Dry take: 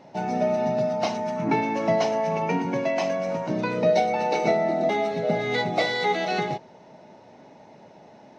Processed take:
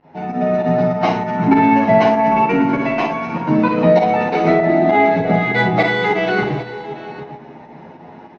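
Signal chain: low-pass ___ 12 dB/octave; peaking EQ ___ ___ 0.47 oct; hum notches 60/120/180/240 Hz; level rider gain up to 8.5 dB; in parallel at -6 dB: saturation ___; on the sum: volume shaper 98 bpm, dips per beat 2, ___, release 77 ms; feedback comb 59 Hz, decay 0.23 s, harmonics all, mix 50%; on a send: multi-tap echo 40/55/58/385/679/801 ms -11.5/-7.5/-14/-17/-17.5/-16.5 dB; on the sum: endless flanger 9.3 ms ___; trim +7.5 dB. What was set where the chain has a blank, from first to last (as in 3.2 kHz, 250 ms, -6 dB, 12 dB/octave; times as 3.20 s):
2.1 kHz, 590 Hz, -10 dB, -15.5 dBFS, -21 dB, +0.25 Hz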